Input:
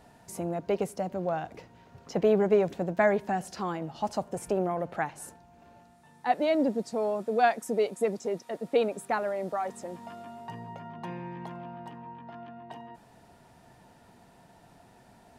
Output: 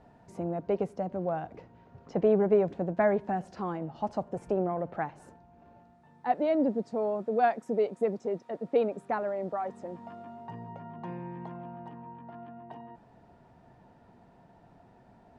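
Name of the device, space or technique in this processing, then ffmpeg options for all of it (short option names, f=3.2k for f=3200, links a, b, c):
through cloth: -af "lowpass=7.2k,highshelf=f=2.3k:g=-15.5"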